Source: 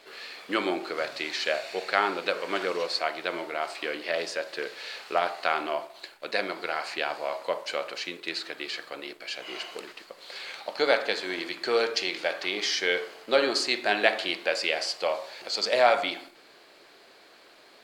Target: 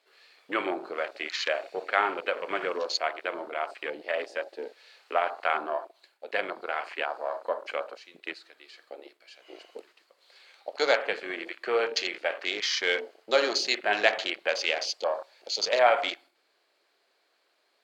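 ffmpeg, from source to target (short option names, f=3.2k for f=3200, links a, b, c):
-af "highpass=62,bass=f=250:g=-14,treble=f=4k:g=1,afwtdn=0.0224"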